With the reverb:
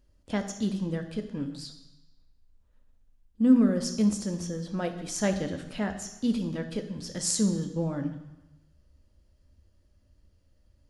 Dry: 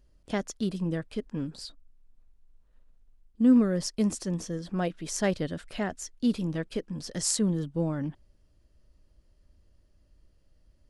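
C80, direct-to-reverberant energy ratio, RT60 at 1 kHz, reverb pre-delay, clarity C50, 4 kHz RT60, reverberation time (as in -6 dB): 12.0 dB, 6.0 dB, 1.1 s, 3 ms, 10.0 dB, 1.1 s, 1.0 s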